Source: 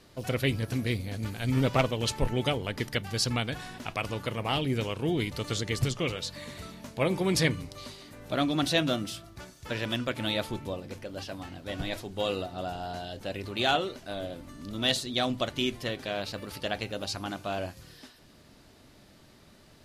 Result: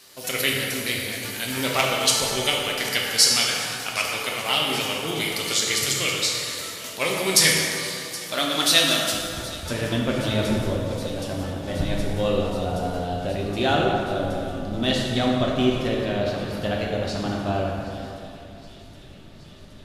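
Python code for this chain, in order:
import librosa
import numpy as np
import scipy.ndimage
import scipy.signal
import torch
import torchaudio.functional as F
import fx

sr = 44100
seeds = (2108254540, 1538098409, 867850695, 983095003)

y = fx.tilt_eq(x, sr, slope=fx.steps((0.0, 4.0), (9.11, -2.0)))
y = fx.echo_wet_highpass(y, sr, ms=771, feedback_pct=78, hz=2700.0, wet_db=-18)
y = fx.rev_plate(y, sr, seeds[0], rt60_s=2.7, hf_ratio=0.55, predelay_ms=0, drr_db=-2.5)
y = y * librosa.db_to_amplitude(2.0)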